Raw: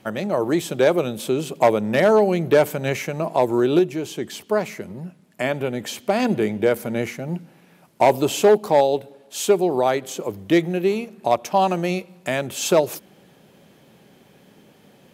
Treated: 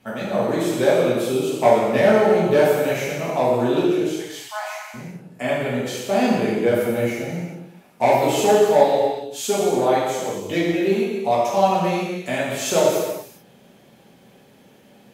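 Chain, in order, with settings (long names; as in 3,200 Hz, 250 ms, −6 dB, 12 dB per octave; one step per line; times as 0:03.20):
0:04.10–0:04.94: Butterworth high-pass 700 Hz 72 dB per octave
reverb whose tail is shaped and stops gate 460 ms falling, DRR −8 dB
level −7.5 dB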